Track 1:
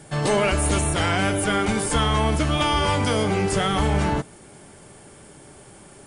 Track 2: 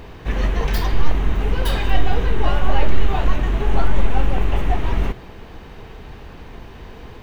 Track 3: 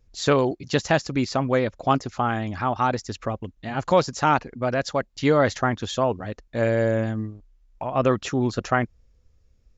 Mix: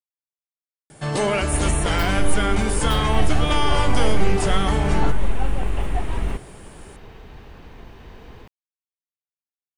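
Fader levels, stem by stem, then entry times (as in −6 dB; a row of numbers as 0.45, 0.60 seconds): −1.0 dB, −4.5 dB, muted; 0.90 s, 1.25 s, muted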